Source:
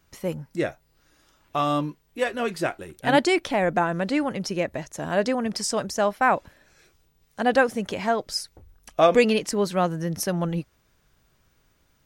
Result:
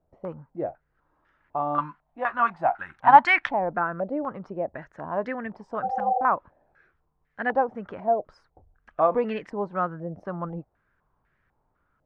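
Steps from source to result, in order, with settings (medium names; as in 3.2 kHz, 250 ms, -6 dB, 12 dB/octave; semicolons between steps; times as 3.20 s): 1.78–3.49 s: FFT filter 260 Hz 0 dB, 420 Hz -14 dB, 830 Hz +12 dB; 5.86–6.21 s: spectral replace 380–790 Hz after; step-sequenced low-pass 4 Hz 660–1800 Hz; trim -8.5 dB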